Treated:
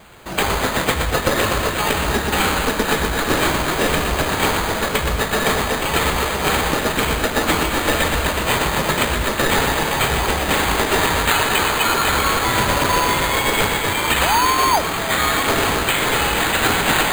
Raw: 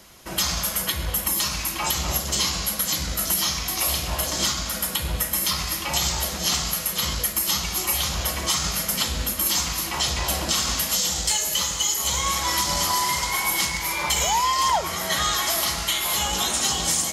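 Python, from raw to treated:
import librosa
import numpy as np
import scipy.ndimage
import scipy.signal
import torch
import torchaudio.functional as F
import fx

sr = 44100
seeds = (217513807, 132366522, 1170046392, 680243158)

y = fx.echo_wet_highpass(x, sr, ms=120, feedback_pct=73, hz=3600.0, wet_db=-4.0)
y = np.repeat(y[::8], 8)[:len(y)]
y = y * 10.0 ** (4.5 / 20.0)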